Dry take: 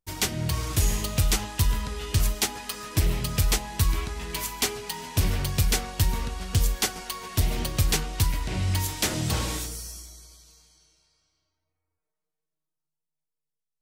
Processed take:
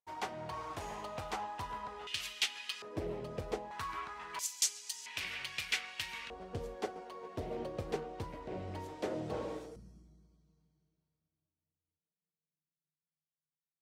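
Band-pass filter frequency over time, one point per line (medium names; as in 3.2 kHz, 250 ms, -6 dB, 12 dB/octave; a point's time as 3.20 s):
band-pass filter, Q 2.1
850 Hz
from 2.07 s 2.9 kHz
from 2.82 s 500 Hz
from 3.71 s 1.2 kHz
from 4.39 s 6.6 kHz
from 5.06 s 2.4 kHz
from 6.30 s 500 Hz
from 9.76 s 180 Hz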